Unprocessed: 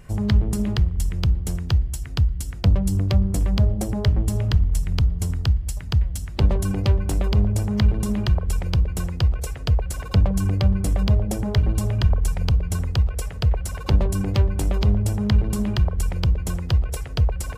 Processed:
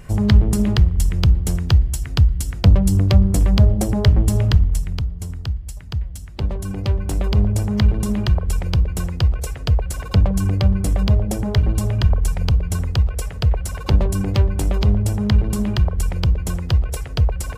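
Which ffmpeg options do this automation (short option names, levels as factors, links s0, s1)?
-af "volume=4.22,afade=t=out:st=4.44:d=0.61:silence=0.316228,afade=t=in:st=6.58:d=0.85:silence=0.446684"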